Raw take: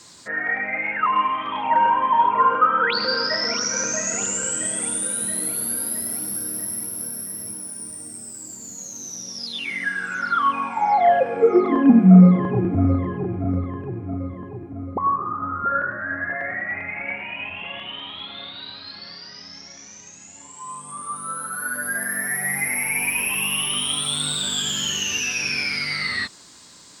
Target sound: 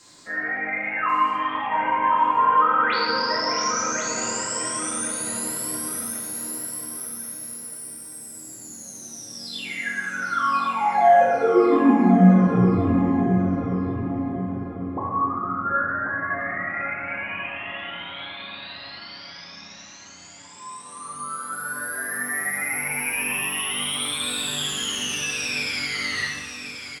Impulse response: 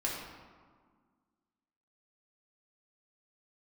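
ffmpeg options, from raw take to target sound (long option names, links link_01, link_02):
-filter_complex "[0:a]asettb=1/sr,asplit=3[link_01][link_02][link_03];[link_01]atrim=end=6.054[link_04];[link_02]atrim=start=6.05:end=8.34,asetpts=PTS-STARTPTS,afade=type=in:duration=0.004:curve=qsin,afade=type=out:start_time=2.286:duration=0.004:curve=qsin,lowshelf=frequency=490:gain=-10[link_05];[link_03]atrim=start=8.336[link_06];[link_04][link_05]acrossfade=duration=0.004:curve1=hsin:curve2=qsin[link_07];[link_07][link_06]acrossfade=duration=0.004:curve1=qsin:curve2=hsin,aecho=1:1:1087|2174|3261|4348:0.335|0.124|0.0459|0.017[link_08];[1:a]atrim=start_sample=2205[link_09];[link_08][link_09]afir=irnorm=-1:irlink=0,volume=-6dB"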